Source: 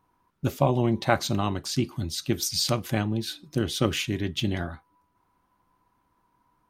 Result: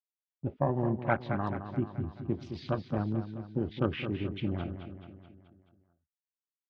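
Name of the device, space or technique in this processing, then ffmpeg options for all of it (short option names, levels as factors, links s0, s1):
action camera in a waterproof case: -af "afwtdn=0.0224,agate=range=0.0224:threshold=0.00355:ratio=16:detection=peak,lowpass=f=2600:w=0.5412,lowpass=f=2600:w=1.3066,aecho=1:1:215|430|645|860|1075|1290:0.335|0.181|0.0977|0.0527|0.0285|0.0154,dynaudnorm=f=210:g=5:m=1.5,volume=0.376" -ar 48000 -c:a aac -b:a 48k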